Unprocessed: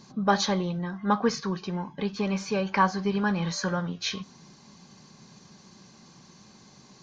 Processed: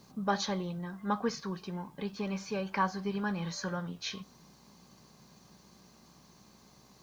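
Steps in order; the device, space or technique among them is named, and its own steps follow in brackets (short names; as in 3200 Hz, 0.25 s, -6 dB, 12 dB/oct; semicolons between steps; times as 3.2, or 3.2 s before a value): video cassette with head-switching buzz (buzz 60 Hz, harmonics 21, -59 dBFS -2 dB/oct; white noise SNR 35 dB); gain -7.5 dB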